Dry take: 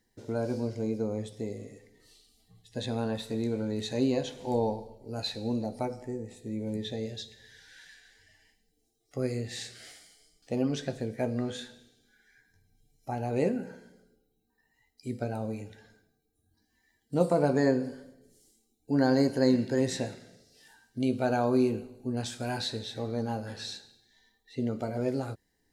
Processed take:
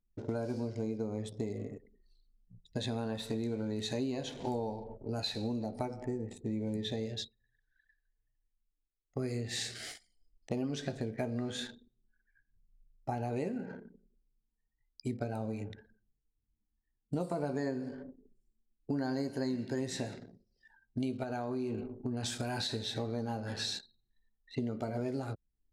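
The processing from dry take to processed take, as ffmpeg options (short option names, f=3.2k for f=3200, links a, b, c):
-filter_complex "[0:a]asettb=1/sr,asplit=3[a][b][c];[a]atrim=end=21.234[d];[b]atrim=start=21.23:end=22.71,asetpts=PTS-STARTPTS,afade=t=in:d=0.004:c=qsin,afade=t=out:st=1.476:d=0.004:c=qsin,acompressor=threshold=-31dB:ratio=5:attack=3.2:release=140:knee=1:detection=peak[e];[c]atrim=start=22.706[f];[d][e]acrossfade=d=0.004:c1=hsin:c2=qsin[g];[g][f]acrossfade=d=0.004:c1=qsin:c2=hsin,asplit=3[h][i][j];[h]atrim=end=7.34,asetpts=PTS-STARTPTS,afade=t=out:st=7.12:d=0.22:silence=0.354813[k];[i]atrim=start=7.34:end=9.07,asetpts=PTS-STARTPTS,volume=-9dB[l];[j]atrim=start=9.07,asetpts=PTS-STARTPTS,afade=t=in:d=0.22:silence=0.354813[m];[k][l][m]concat=n=3:v=0:a=1,bandreject=f=510:w=12,anlmdn=0.00398,acompressor=threshold=-38dB:ratio=6,volume=5.5dB"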